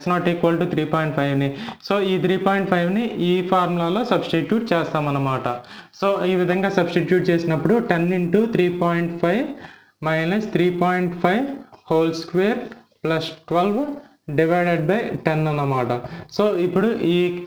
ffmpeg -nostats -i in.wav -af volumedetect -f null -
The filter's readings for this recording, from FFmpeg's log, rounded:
mean_volume: -20.3 dB
max_volume: -1.7 dB